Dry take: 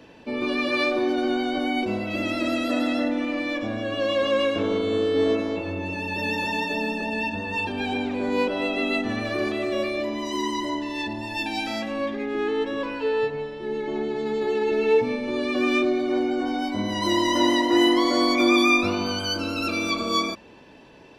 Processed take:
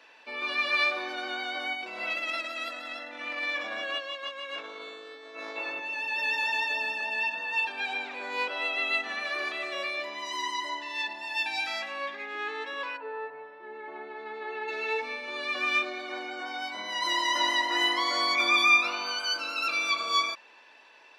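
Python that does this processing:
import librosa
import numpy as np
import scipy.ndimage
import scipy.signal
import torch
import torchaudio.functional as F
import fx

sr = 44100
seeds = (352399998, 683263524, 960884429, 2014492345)

y = fx.over_compress(x, sr, threshold_db=-29.0, ratio=-1.0, at=(1.73, 5.8))
y = fx.lowpass(y, sr, hz=fx.line((12.96, 1000.0), (14.67, 2500.0)), slope=12, at=(12.96, 14.67), fade=0.02)
y = scipy.signal.sosfilt(scipy.signal.butter(2, 1200.0, 'highpass', fs=sr, output='sos'), y)
y = fx.high_shelf(y, sr, hz=6100.0, db=-11.0)
y = fx.notch(y, sr, hz=3100.0, q=18.0)
y = F.gain(torch.from_numpy(y), 2.5).numpy()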